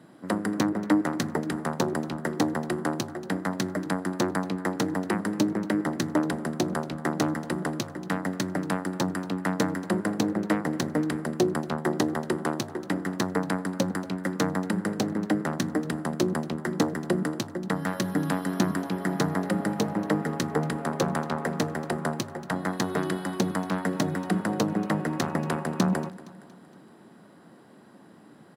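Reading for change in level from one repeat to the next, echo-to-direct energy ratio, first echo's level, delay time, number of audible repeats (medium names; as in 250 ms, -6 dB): -6.0 dB, -17.5 dB, -19.0 dB, 233 ms, 3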